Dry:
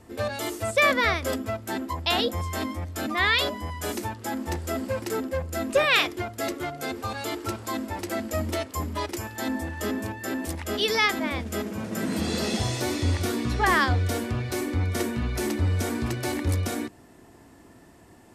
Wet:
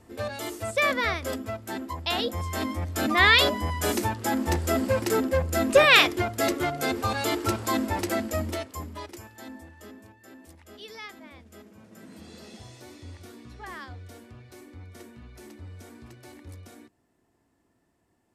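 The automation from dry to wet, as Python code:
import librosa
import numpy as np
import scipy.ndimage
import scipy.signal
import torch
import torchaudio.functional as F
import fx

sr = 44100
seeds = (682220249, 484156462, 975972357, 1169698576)

y = fx.gain(x, sr, db=fx.line((2.19, -3.5), (3.12, 4.5), (7.99, 4.5), (8.91, -8.0), (10.07, -19.0)))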